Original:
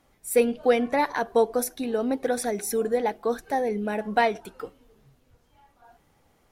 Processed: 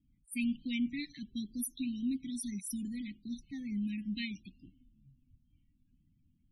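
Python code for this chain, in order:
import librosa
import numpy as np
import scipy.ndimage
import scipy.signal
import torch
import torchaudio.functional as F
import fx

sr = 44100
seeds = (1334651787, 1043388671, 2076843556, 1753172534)

y = scipy.signal.sosfilt(scipy.signal.cheby2(4, 40, [430.0, 1500.0], 'bandstop', fs=sr, output='sos'), x)
y = fx.spec_topn(y, sr, count=32)
y = fx.env_lowpass(y, sr, base_hz=1300.0, full_db=-30.0)
y = y * 10.0 ** (-3.5 / 20.0)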